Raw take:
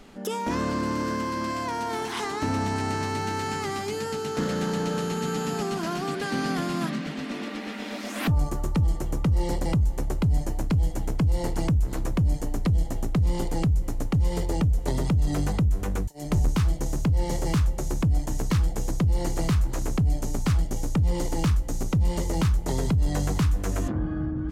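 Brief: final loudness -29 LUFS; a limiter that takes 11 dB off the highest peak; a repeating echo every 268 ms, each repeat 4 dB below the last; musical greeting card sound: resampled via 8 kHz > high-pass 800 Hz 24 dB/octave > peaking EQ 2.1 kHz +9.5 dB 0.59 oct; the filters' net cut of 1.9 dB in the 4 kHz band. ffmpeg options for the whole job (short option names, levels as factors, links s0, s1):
-af "equalizer=f=4000:t=o:g=-4.5,alimiter=level_in=1.41:limit=0.0631:level=0:latency=1,volume=0.708,aecho=1:1:268|536|804|1072|1340|1608|1876|2144|2412:0.631|0.398|0.25|0.158|0.0994|0.0626|0.0394|0.0249|0.0157,aresample=8000,aresample=44100,highpass=f=800:w=0.5412,highpass=f=800:w=1.3066,equalizer=f=2100:t=o:w=0.59:g=9.5,volume=3.16"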